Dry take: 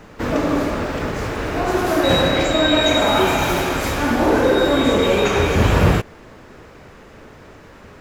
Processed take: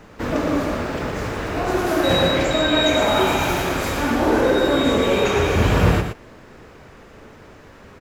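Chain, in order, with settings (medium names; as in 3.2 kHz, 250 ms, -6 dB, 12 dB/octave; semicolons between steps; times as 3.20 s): delay 116 ms -7 dB; trim -2.5 dB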